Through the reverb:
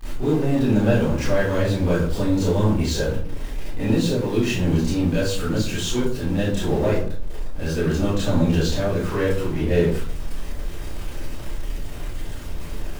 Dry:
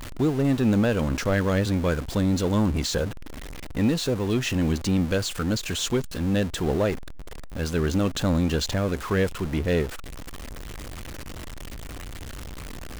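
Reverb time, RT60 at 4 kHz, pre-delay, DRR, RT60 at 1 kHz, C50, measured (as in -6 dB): 0.50 s, 0.35 s, 24 ms, -12.5 dB, 0.50 s, 0.5 dB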